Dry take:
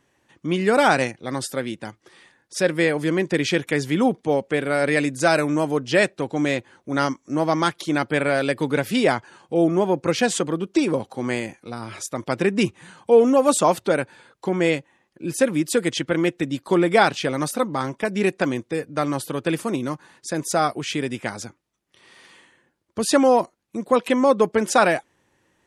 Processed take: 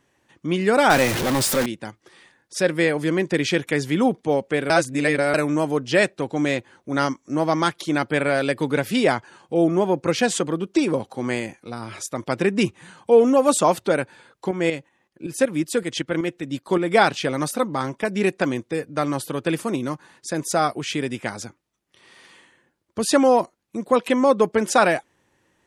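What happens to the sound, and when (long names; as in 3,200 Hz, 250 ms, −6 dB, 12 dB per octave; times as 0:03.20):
0:00.90–0:01.66: converter with a step at zero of −18.5 dBFS
0:04.70–0:05.34: reverse
0:14.51–0:16.96: shaped tremolo saw up 5.3 Hz, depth 60%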